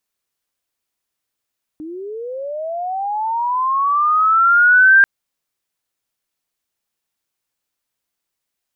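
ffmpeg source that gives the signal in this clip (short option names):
-f lavfi -i "aevalsrc='pow(10,(-27.5+22*t/3.24)/20)*sin(2*PI*(300*t+1300*t*t/(2*3.24)))':d=3.24:s=44100"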